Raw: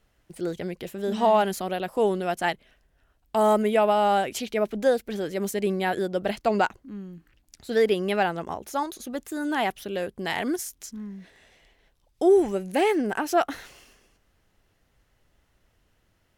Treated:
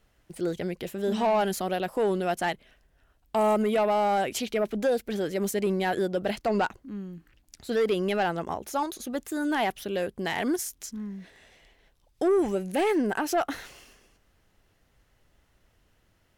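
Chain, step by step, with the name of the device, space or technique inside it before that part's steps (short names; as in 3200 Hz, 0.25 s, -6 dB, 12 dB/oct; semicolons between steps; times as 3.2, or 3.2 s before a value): soft clipper into limiter (soft clip -16.5 dBFS, distortion -16 dB; limiter -19.5 dBFS, peak gain reduction 2.5 dB); gain +1 dB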